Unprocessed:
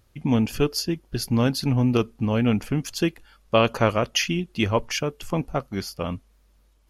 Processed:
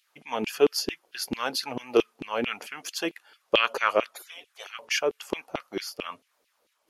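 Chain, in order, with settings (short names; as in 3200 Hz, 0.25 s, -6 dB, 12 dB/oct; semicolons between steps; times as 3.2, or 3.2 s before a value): 4.14–4.79 spectral gate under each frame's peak -25 dB weak; LFO high-pass saw down 4.5 Hz 330–3100 Hz; gain -2 dB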